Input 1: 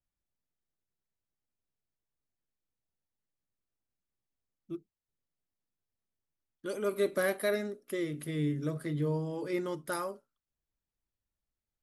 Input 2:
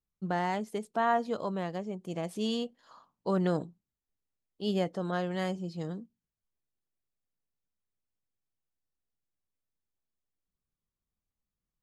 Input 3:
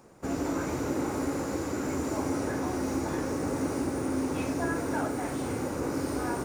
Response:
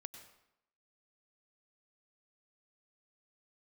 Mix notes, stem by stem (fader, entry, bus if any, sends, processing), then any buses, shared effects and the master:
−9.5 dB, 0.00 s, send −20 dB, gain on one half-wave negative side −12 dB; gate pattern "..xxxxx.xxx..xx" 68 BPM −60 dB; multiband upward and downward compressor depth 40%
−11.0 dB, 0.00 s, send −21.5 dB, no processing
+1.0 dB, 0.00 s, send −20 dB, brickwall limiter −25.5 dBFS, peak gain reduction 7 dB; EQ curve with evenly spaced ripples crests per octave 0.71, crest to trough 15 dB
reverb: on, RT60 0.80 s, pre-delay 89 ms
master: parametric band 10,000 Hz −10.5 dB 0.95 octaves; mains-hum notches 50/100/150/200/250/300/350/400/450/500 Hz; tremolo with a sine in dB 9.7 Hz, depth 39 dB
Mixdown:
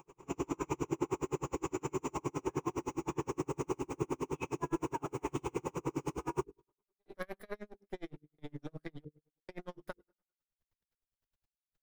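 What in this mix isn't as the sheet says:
stem 1 −9.5 dB → −1.5 dB
stem 2: muted

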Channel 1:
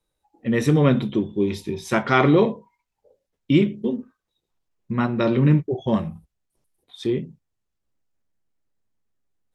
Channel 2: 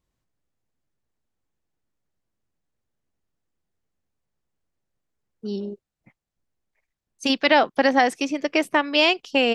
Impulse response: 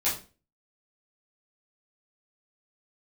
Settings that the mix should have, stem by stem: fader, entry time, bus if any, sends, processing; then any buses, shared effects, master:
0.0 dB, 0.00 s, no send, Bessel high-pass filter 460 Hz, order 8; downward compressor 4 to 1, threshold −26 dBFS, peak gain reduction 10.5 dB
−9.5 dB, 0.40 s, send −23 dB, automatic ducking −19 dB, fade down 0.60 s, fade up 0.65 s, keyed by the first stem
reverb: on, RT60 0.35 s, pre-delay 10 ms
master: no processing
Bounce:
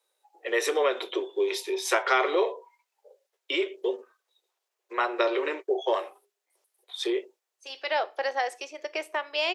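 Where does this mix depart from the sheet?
stem 1 0.0 dB → +6.0 dB
master: extra Chebyshev high-pass filter 370 Hz, order 5

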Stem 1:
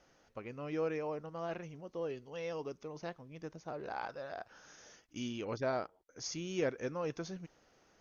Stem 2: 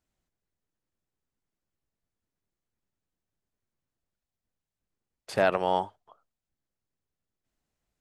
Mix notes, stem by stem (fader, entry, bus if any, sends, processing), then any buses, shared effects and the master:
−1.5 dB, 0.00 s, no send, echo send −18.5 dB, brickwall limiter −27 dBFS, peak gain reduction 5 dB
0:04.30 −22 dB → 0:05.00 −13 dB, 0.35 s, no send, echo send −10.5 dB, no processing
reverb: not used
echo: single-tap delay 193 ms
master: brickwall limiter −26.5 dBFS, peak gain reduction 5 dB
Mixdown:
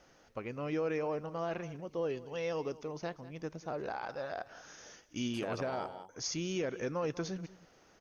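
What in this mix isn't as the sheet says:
stem 1 −1.5 dB → +4.5 dB
stem 2: entry 0.35 s → 0.05 s

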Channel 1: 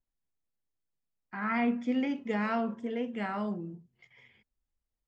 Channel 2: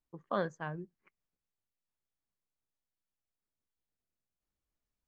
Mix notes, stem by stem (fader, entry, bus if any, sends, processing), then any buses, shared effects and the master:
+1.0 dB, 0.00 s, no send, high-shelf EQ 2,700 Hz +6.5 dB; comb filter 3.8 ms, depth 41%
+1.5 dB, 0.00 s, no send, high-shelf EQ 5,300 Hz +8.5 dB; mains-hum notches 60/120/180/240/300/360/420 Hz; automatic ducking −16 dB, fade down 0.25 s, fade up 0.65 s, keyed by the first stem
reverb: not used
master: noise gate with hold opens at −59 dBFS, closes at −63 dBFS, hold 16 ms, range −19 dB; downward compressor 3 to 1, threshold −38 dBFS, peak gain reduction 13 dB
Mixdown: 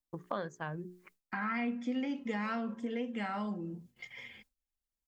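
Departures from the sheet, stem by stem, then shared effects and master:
stem 1 +1.0 dB → +8.0 dB
stem 2 +1.5 dB → +9.5 dB

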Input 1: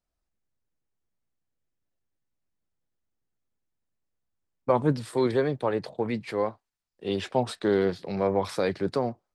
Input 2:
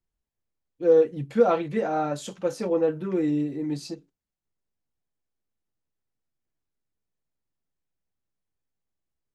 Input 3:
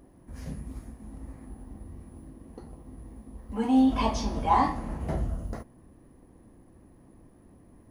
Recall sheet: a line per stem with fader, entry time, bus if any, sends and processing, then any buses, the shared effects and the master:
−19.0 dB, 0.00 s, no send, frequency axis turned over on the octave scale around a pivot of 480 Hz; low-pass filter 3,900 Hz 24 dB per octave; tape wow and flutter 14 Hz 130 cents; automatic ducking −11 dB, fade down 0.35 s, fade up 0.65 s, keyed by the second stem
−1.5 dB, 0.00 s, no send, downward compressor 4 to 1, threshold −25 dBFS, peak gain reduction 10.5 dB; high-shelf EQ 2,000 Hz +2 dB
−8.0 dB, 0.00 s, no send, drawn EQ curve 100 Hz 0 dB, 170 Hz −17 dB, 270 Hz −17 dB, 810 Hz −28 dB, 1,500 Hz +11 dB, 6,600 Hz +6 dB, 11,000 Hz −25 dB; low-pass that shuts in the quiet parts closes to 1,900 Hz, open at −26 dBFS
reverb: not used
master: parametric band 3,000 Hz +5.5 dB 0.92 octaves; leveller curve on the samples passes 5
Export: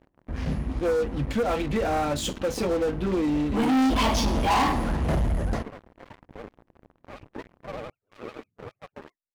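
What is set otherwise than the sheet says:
stem 1 −19.0 dB → −30.0 dB
stem 2 −1.5 dB → −13.0 dB
stem 3: missing drawn EQ curve 100 Hz 0 dB, 170 Hz −17 dB, 270 Hz −17 dB, 810 Hz −28 dB, 1,500 Hz +11 dB, 6,600 Hz +6 dB, 11,000 Hz −25 dB

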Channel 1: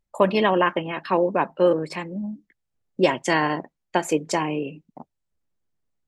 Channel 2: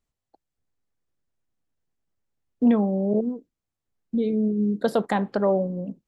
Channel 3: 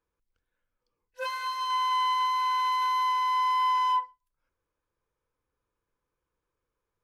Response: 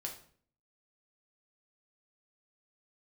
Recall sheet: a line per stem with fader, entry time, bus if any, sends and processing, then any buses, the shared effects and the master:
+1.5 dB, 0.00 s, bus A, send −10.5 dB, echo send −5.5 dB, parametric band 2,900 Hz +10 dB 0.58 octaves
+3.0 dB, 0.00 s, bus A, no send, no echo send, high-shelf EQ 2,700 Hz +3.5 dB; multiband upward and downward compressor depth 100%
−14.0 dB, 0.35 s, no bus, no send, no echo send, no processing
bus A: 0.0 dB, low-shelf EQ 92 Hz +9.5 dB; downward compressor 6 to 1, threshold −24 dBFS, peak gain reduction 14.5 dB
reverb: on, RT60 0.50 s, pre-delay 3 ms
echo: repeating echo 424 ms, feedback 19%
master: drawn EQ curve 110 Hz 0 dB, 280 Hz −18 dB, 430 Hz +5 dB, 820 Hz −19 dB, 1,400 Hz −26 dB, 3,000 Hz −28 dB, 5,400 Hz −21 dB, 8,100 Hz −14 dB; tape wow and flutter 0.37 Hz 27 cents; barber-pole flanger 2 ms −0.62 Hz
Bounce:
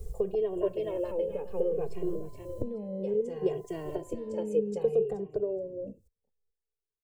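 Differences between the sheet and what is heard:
stem 1: send −10.5 dB → −17 dB
stem 2 +3.0 dB → +13.0 dB
master: missing tape wow and flutter 0.37 Hz 27 cents

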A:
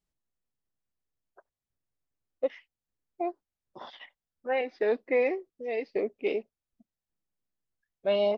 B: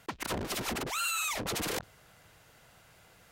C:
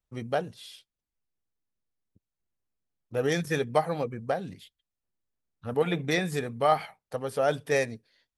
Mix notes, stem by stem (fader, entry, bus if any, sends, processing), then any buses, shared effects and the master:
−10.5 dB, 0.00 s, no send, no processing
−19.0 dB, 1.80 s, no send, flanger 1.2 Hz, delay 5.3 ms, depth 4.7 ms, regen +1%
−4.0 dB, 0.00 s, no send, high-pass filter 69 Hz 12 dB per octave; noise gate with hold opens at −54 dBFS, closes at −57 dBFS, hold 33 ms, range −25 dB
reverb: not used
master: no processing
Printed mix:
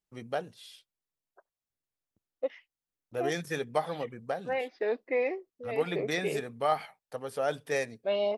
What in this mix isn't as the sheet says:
stem A −10.5 dB → −2.5 dB
stem B: muted
master: extra low-shelf EQ 190 Hz −7.5 dB

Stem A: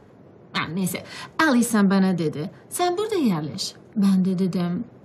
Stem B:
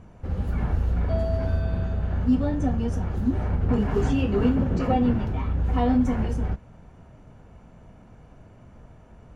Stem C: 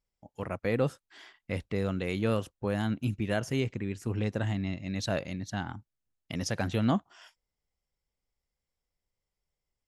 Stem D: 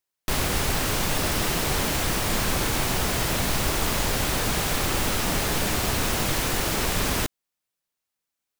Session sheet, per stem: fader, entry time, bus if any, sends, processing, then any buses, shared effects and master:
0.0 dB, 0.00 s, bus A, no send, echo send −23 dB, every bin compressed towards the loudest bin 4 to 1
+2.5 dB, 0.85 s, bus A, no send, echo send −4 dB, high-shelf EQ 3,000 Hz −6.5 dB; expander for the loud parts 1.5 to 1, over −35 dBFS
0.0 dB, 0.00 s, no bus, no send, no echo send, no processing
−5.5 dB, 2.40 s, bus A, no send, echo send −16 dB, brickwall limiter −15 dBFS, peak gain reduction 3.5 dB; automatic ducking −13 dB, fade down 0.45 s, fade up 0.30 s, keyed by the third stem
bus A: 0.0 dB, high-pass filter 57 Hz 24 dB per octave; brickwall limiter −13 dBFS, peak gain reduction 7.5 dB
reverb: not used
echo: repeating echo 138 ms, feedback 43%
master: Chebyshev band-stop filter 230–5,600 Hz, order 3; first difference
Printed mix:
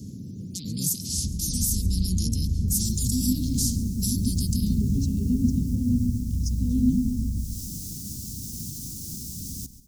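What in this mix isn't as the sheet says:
stem A 0.0 dB → +6.0 dB
master: missing first difference

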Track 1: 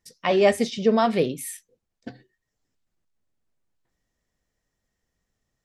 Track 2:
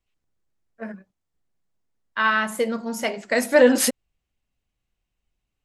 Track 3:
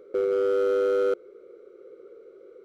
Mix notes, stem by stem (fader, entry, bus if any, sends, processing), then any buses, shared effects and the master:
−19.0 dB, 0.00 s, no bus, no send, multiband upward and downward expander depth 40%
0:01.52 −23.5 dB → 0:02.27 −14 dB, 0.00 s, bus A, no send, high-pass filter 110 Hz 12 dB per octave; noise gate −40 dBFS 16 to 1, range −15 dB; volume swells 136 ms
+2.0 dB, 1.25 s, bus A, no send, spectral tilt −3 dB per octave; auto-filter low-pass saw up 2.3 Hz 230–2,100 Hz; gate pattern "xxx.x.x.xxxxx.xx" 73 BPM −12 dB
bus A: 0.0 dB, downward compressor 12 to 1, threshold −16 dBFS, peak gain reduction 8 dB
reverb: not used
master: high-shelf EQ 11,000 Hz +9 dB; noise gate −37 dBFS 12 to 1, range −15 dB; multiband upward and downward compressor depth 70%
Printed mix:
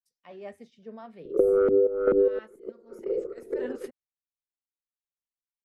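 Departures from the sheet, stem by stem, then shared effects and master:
stem 1 −19.0 dB → −30.5 dB
stem 2 −23.5 dB → −35.0 dB

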